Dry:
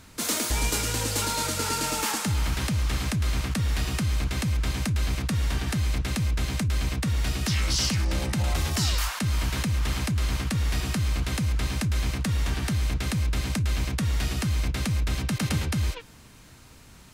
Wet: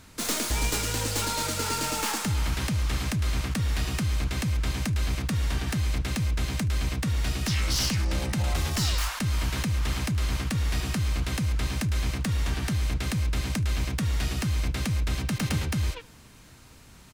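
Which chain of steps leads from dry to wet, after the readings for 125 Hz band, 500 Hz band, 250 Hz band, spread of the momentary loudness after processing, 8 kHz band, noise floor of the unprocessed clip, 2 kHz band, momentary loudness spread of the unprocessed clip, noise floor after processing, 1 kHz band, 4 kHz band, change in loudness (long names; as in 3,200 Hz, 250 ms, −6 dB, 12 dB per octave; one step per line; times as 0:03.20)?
−1.0 dB, −1.0 dB, −1.0 dB, 2 LU, −1.5 dB, −50 dBFS, −1.0 dB, 2 LU, −51 dBFS, −1.0 dB, −1.0 dB, −1.0 dB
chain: stylus tracing distortion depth 0.028 ms
on a send: single-tap delay 75 ms −23.5 dB
on the sum: level −1 dB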